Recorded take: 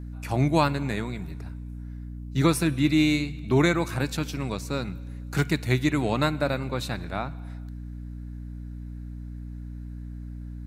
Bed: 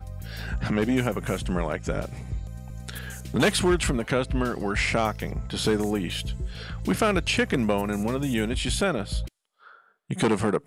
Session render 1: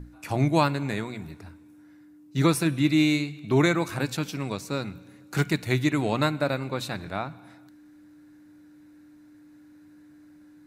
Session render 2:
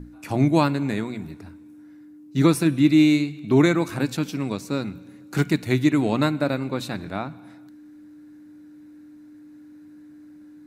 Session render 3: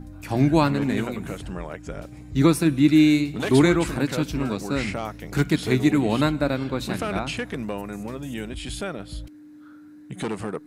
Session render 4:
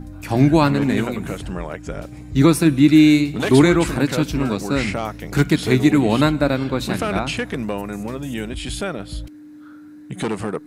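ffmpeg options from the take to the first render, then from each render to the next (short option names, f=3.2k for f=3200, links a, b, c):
-af "bandreject=f=60:t=h:w=6,bandreject=f=120:t=h:w=6,bandreject=f=180:t=h:w=6,bandreject=f=240:t=h:w=6"
-af "equalizer=f=260:w=1.2:g=7"
-filter_complex "[1:a]volume=-6.5dB[a];[0:a][a]amix=inputs=2:normalize=0"
-af "volume=5dB,alimiter=limit=-3dB:level=0:latency=1"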